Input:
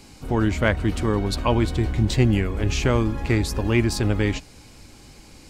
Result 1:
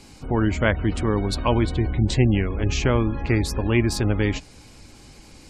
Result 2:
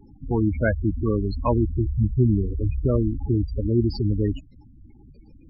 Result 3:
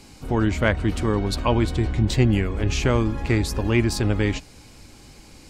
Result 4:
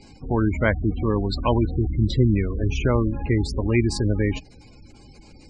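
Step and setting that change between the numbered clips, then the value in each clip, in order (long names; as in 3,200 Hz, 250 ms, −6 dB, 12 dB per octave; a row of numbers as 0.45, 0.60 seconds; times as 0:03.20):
gate on every frequency bin, under each frame's peak: −35, −10, −55, −20 decibels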